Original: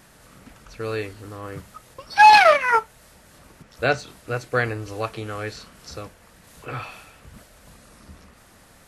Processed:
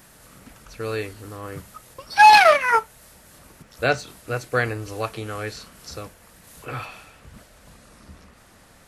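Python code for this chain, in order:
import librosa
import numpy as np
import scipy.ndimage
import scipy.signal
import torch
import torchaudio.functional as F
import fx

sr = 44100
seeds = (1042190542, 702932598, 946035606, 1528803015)

y = fx.high_shelf(x, sr, hz=10000.0, db=fx.steps((0.0, 10.0), (6.85, -2.5)))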